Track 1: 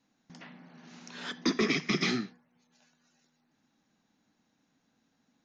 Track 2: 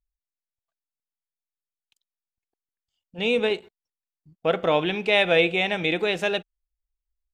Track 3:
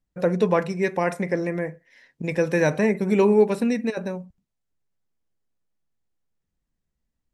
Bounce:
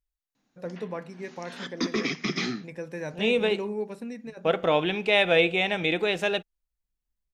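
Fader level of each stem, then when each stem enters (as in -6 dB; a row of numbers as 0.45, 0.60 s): 0.0, -1.5, -14.5 dB; 0.35, 0.00, 0.40 s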